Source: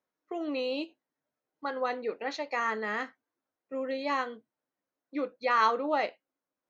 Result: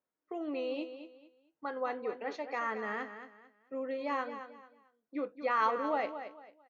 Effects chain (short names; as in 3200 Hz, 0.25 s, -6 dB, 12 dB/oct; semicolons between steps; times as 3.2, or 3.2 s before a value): high shelf 3200 Hz -9.5 dB; notch 4000 Hz, Q 13; feedback echo 0.222 s, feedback 28%, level -10.5 dB; gain -3.5 dB